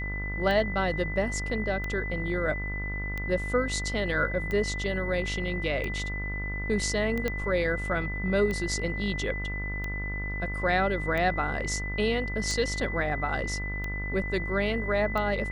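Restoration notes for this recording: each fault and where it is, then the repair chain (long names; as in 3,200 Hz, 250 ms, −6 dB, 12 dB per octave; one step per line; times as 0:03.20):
mains buzz 50 Hz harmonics 32 −34 dBFS
scratch tick 45 rpm −20 dBFS
whistle 2,000 Hz −34 dBFS
0:07.28: click −15 dBFS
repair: click removal
notch filter 2,000 Hz, Q 30
hum removal 50 Hz, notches 32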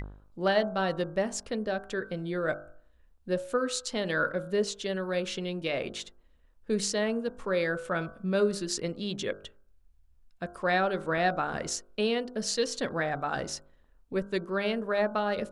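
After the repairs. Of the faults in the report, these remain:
none of them is left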